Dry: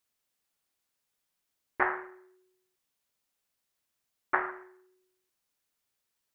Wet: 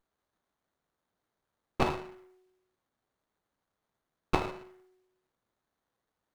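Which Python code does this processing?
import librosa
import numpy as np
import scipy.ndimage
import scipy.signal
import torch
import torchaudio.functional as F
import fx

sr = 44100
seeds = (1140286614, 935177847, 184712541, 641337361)

y = fx.dynamic_eq(x, sr, hz=1600.0, q=4.5, threshold_db=-41.0, ratio=4.0, max_db=-4)
y = fx.running_max(y, sr, window=17)
y = y * librosa.db_to_amplitude(2.0)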